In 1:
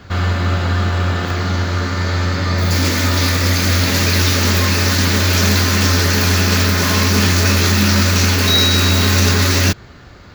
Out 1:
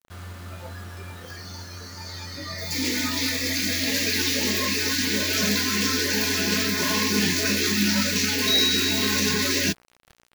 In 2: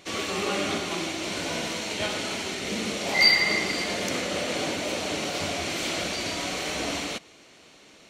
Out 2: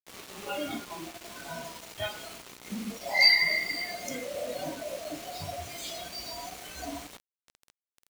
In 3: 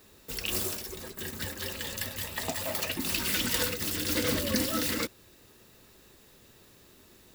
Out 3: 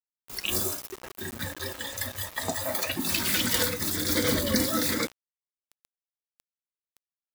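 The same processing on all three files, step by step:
spectral noise reduction 16 dB; mains buzz 60 Hz, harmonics 22, -56 dBFS -1 dB/octave; bit crusher 7-bit; peak normalisation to -9 dBFS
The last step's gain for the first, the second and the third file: -6.0 dB, -1.5 dB, +3.5 dB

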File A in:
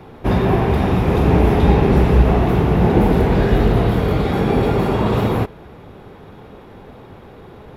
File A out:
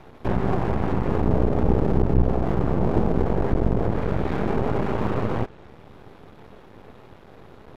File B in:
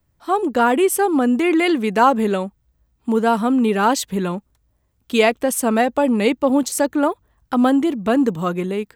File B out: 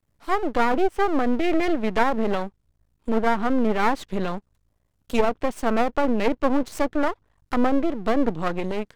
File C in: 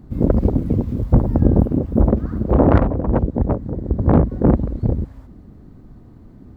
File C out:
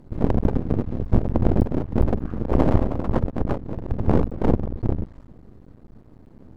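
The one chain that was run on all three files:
low-pass that closes with the level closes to 700 Hz, closed at -9.5 dBFS; half-wave rectifier; normalise loudness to -24 LUFS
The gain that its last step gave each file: -3.0 dB, -0.5 dB, -1.0 dB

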